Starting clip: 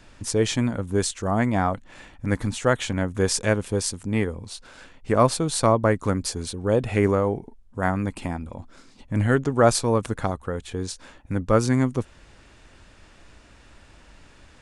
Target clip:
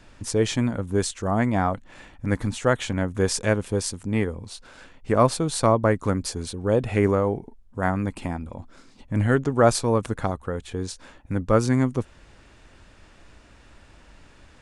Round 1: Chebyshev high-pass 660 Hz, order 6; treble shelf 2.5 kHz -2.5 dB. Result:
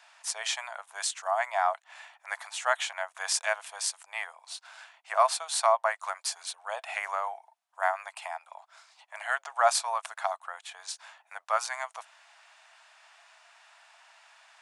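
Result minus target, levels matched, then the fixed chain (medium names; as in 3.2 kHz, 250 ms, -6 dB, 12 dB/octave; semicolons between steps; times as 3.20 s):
500 Hz band -4.0 dB
treble shelf 2.5 kHz -2.5 dB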